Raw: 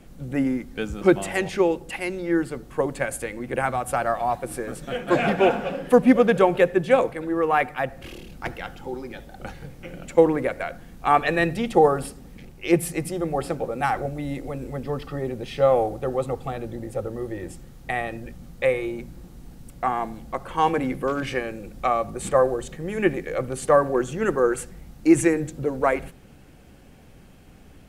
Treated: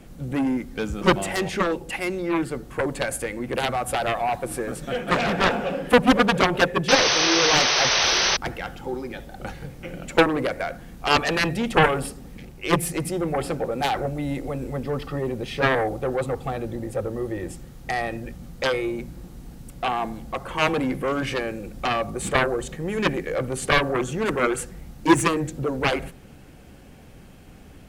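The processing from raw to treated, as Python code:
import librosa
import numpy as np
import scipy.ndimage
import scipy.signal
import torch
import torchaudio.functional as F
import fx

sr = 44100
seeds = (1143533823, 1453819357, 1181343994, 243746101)

y = fx.cheby_harmonics(x, sr, harmonics=(7,), levels_db=(-7,), full_scale_db=-3.5)
y = fx.spec_paint(y, sr, seeds[0], shape='noise', start_s=6.88, length_s=1.49, low_hz=340.0, high_hz=6300.0, level_db=-17.0)
y = y * librosa.db_to_amplitude(-3.5)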